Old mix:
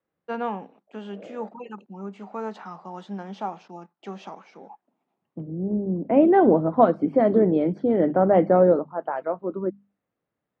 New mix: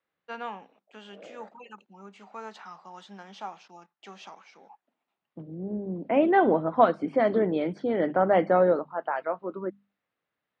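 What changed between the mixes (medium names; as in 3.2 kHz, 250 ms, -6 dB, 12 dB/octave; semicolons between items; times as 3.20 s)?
first voice -6.0 dB; master: add tilt shelf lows -8.5 dB, about 940 Hz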